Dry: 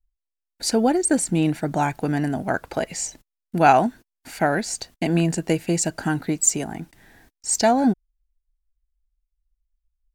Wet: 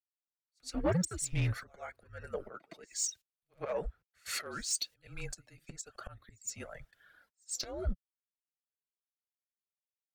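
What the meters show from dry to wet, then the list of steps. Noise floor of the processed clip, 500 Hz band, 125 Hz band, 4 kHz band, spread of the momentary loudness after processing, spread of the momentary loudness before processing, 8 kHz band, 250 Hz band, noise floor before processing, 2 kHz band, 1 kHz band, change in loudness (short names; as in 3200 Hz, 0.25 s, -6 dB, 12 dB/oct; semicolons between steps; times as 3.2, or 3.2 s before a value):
under -85 dBFS, -17.0 dB, -11.5 dB, -9.5 dB, 17 LU, 11 LU, -13.5 dB, -20.5 dB, -84 dBFS, -17.0 dB, -25.0 dB, -15.5 dB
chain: weighting filter A; reverb removal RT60 1.1 s; bell 980 Hz -2.5 dB 1.2 oct; in parallel at -3 dB: compressor 6:1, threshold -37 dBFS, peak gain reduction 22.5 dB; on the sum: frequency shift -190 Hz; wavefolder -9.5 dBFS; auto swell 0.599 s; flange 0.99 Hz, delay 1.4 ms, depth 7.6 ms, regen -44%; soft clip -32.5 dBFS, distortion -13 dB; pre-echo 0.113 s -18.5 dB; three-band expander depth 70%; gain +3 dB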